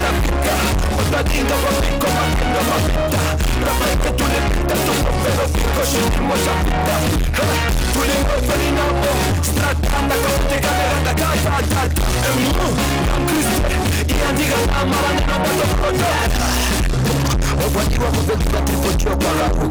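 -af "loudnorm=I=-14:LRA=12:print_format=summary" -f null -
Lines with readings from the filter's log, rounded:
Input Integrated:    -17.4 LUFS
Input True Peak:     -11.1 dBTP
Input LRA:             0.7 LU
Input Threshold:     -27.4 LUFS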